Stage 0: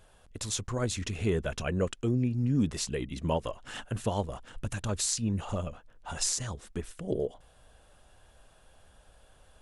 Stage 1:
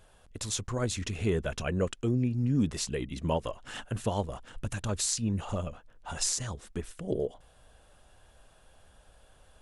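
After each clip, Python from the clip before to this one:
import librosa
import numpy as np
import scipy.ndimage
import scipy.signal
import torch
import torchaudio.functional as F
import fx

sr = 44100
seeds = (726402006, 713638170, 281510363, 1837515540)

y = x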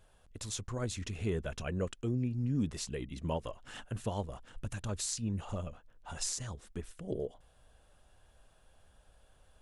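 y = fx.low_shelf(x, sr, hz=150.0, db=3.0)
y = y * 10.0 ** (-6.5 / 20.0)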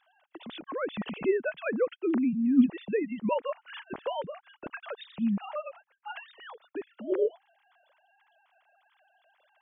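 y = fx.sine_speech(x, sr)
y = y * 10.0 ** (6.5 / 20.0)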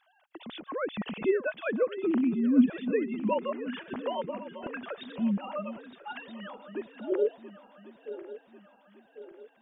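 y = fx.reverse_delay_fb(x, sr, ms=548, feedback_pct=67, wet_db=-13)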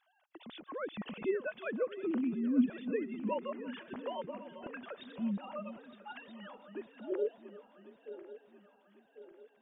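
y = fx.echo_feedback(x, sr, ms=334, feedback_pct=34, wet_db=-20.0)
y = y * 10.0 ** (-7.0 / 20.0)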